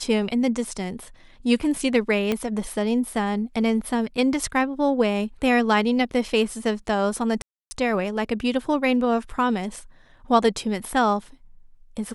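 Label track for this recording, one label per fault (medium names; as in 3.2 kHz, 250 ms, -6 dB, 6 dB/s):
2.320000	2.320000	pop -10 dBFS
7.420000	7.710000	dropout 290 ms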